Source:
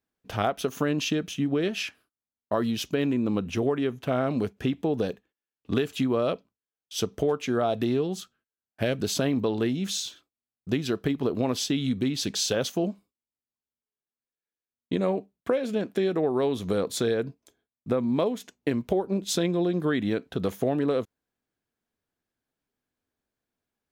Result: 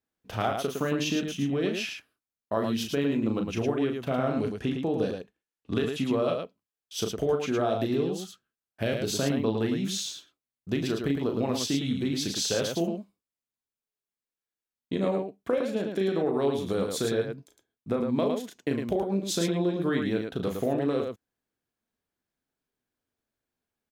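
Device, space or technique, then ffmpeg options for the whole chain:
slapback doubling: -filter_complex "[0:a]asettb=1/sr,asplit=3[a][b][c];[a]atrim=end=4.364[d];[b]atrim=start=4.36:end=6,asetpts=PTS-STARTPTS,afade=t=in:d=0.004:c=qsin,afade=t=out:st=1.636:d=0.004:c=qsin,lowpass=f=12k:w=0.5412,lowpass=f=12k:w=1.3066[e];[c]atrim=start=5.996[f];[d][e]acrossfade=d=0.004:c1=hsin:c2=qsin[g];[g][f]acrossfade=d=0.004:c1=qsin:c2=hsin,asplit=3[h][i][j];[i]adelay=36,volume=-6dB[k];[j]adelay=109,volume=-5dB[l];[h][k][l]amix=inputs=3:normalize=0,volume=-3dB"

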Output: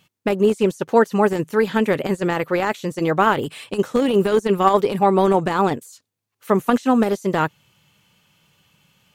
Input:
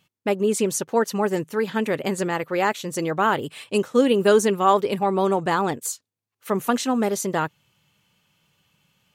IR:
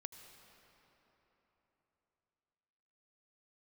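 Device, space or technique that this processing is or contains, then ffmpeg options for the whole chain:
de-esser from a sidechain: -filter_complex "[0:a]asplit=2[a][b];[b]highpass=f=4.4k:w=0.5412,highpass=f=4.4k:w=1.3066,apad=whole_len=403088[c];[a][c]sidechaincompress=threshold=-45dB:ratio=16:attack=0.59:release=20,volume=6dB"

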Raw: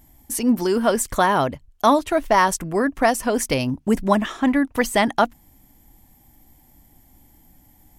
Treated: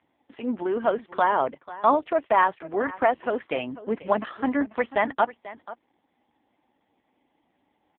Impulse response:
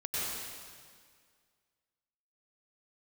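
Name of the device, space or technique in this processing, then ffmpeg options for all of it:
satellite phone: -filter_complex "[0:a]asettb=1/sr,asplit=3[a][b][c];[a]atrim=end=4.074[d];[b]atrim=start=4.07:end=4.72,asetpts=PTS-STARTPTS,afade=t=in:d=0.004:c=qsin,afade=t=out:st=0.646:d=0.004:c=qsin,adynamicequalizer=threshold=0.0282:dfrequency=370:dqfactor=0.94:tfrequency=370:tqfactor=0.94:attack=5:release=100:ratio=0.375:range=1.5:mode=boostabove:tftype=bell[e];[c]atrim=start=4.716[f];[d][e]acrossfade=d=0.004:c1=hsin:c2=qsin[g];[g][f]acrossfade=d=0.004:c1=qsin:c2=hsin,highpass=370,lowpass=3.3k,aecho=1:1:491:0.141,volume=-2dB" -ar 8000 -c:a libopencore_amrnb -b:a 5150

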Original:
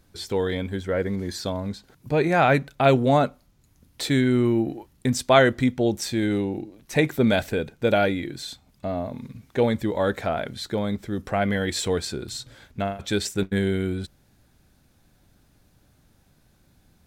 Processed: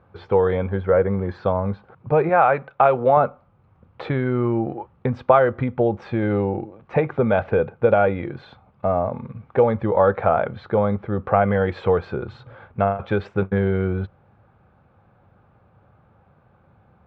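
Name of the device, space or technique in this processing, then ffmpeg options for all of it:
bass amplifier: -filter_complex "[0:a]asettb=1/sr,asplit=3[a][b][c];[a]atrim=end=2.294[d];[b]atrim=start=2.29:end=3.17,asetpts=PTS-STARTPTS,afade=t=in:d=0.004:c=qsin,afade=t=out:st=0.876:d=0.004:c=qsin,lowshelf=f=280:g=-11[e];[c]atrim=start=3.166[f];[d][e]acrossfade=d=0.004:c1=hsin:c2=qsin[g];[g][f]acrossfade=d=0.004:c1=qsin:c2=hsin,acompressor=threshold=-21dB:ratio=6,highpass=79,equalizer=f=100:t=q:w=4:g=5,equalizer=f=280:t=q:w=4:g=-9,equalizer=f=510:t=q:w=4:g=7,equalizer=f=820:t=q:w=4:g=7,equalizer=f=1.2k:t=q:w=4:g=9,equalizer=f=1.9k:t=q:w=4:g=-7,lowpass=f=2.2k:w=0.5412,lowpass=f=2.2k:w=1.3066,volume=5dB"

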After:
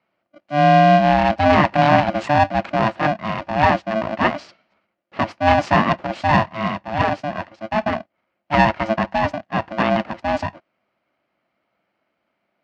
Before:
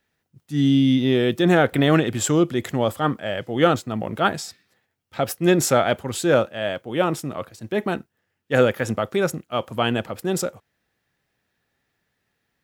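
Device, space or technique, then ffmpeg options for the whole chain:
ring modulator pedal into a guitar cabinet: -af "aeval=exprs='val(0)*sgn(sin(2*PI*440*n/s))':c=same,highpass=100,equalizer=f=200:t=q:w=4:g=6,equalizer=f=670:t=q:w=4:g=8,equalizer=f=3.6k:t=q:w=4:g=-9,lowpass=f=3.9k:w=0.5412,lowpass=f=3.9k:w=1.3066,volume=1dB"

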